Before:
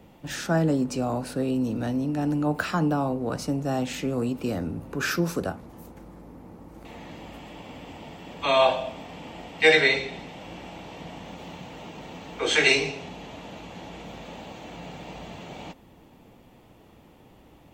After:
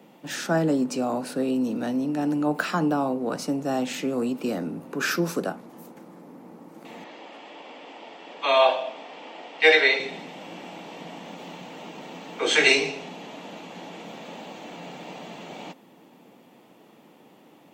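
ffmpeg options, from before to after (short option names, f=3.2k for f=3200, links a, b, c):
-filter_complex "[0:a]asettb=1/sr,asplit=3[a][b][c];[a]atrim=end=7.044[d];[b]atrim=start=7.04:end=10,asetpts=PTS-STARTPTS,afade=t=in:d=0.004:c=qsin,afade=t=out:st=2.956:d=0.004:c=qsin,acrossover=split=300 6500:gain=0.0708 1 0.0631[e][f][g];[e][f][g]amix=inputs=3:normalize=0[h];[c]atrim=start=9.996[i];[d][h]acrossfade=d=0.004:c1=hsin:c2=qsin[j];[j][i]acrossfade=d=0.004:c1=qsin:c2=hsin,highpass=f=180:w=0.5412,highpass=f=180:w=1.3066,volume=1.5dB"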